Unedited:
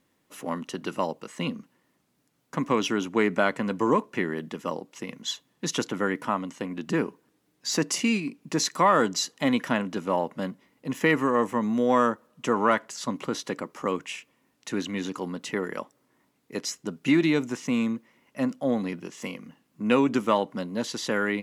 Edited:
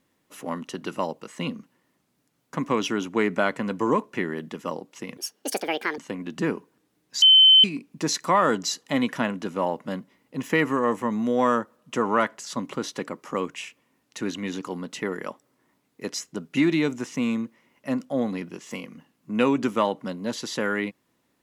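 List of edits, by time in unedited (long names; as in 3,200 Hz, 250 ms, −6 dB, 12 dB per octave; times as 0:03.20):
0:05.17–0:06.49: play speed 163%
0:07.73–0:08.15: beep over 3,070 Hz −10 dBFS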